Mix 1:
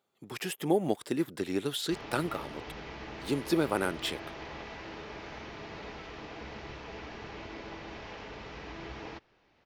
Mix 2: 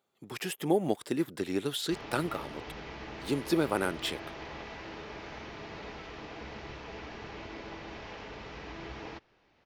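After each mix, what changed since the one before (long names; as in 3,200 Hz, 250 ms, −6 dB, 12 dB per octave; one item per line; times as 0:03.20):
nothing changed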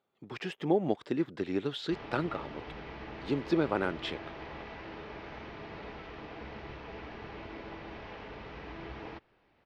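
master: add high-frequency loss of the air 190 metres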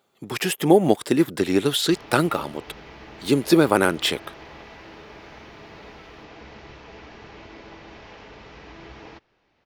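speech +11.5 dB
master: remove high-frequency loss of the air 190 metres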